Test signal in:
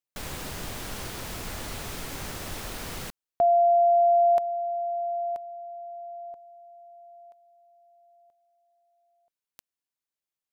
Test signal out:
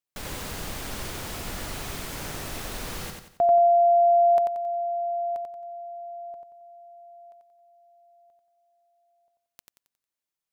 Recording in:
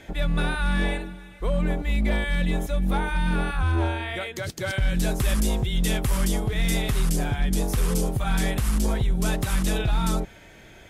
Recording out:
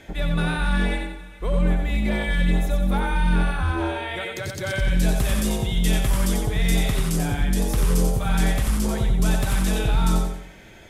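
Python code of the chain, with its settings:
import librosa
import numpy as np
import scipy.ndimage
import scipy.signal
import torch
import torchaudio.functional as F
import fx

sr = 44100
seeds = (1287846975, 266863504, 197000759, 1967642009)

y = fx.echo_feedback(x, sr, ms=90, feedback_pct=38, wet_db=-4.5)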